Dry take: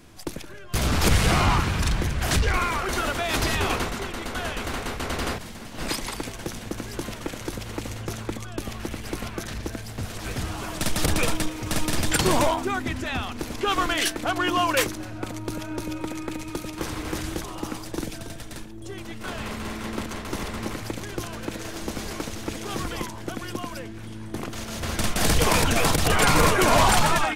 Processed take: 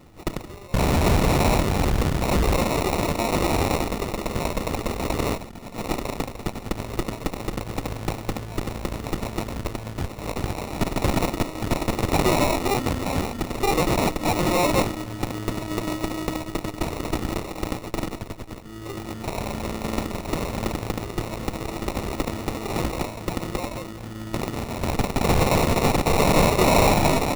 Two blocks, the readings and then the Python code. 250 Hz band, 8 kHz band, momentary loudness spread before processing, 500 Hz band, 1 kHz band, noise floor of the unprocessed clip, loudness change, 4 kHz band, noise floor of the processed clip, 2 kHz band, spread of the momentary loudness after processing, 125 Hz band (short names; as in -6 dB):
+3.5 dB, -3.5 dB, 14 LU, +4.0 dB, +1.0 dB, -38 dBFS, +1.0 dB, -3.0 dB, -38 dBFS, -3.0 dB, 12 LU, +2.5 dB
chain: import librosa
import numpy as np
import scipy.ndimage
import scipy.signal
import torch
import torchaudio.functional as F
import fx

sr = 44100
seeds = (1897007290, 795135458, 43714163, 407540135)

y = fx.cheby_harmonics(x, sr, harmonics=(8,), levels_db=(-11,), full_scale_db=-10.5)
y = fx.sample_hold(y, sr, seeds[0], rate_hz=1600.0, jitter_pct=0)